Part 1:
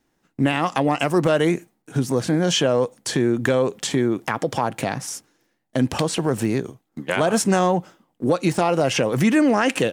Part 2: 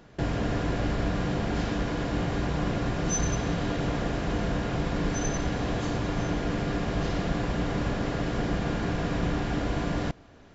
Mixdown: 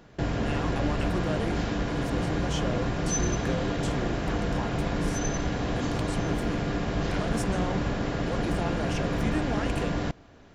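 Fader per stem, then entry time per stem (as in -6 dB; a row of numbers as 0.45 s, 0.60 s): -15.5 dB, 0.0 dB; 0.00 s, 0.00 s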